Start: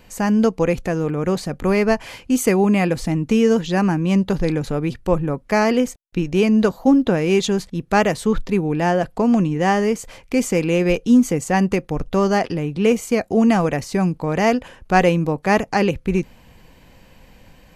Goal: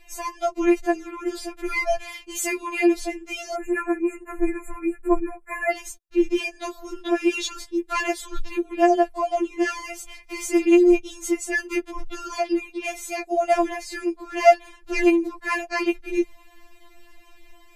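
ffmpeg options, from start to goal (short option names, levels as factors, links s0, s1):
-filter_complex "[0:a]asettb=1/sr,asplit=3[s0][s1][s2];[s0]atrim=end=3.544[s3];[s1]atrim=start=3.54:end=5.72,asetpts=PTS-STARTPTS,afade=t=in:d=0.004:c=qsin,afade=t=out:st=2.176:d=0.004:c=qsin,asuperstop=centerf=4300:order=20:qfactor=0.95[s4];[s2]atrim=start=5.716[s5];[s3][s4]acrossfade=d=0.004:c1=hsin:c2=qsin[s6];[s6][s5]acrossfade=d=0.004:c1=qsin:c2=hsin,afftfilt=real='re*4*eq(mod(b,16),0)':imag='im*4*eq(mod(b,16),0)':win_size=2048:overlap=0.75"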